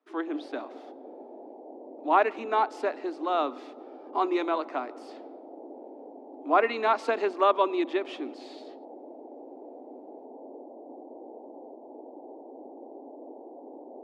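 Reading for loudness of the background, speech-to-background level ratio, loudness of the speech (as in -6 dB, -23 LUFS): -46.0 LUFS, 18.5 dB, -27.5 LUFS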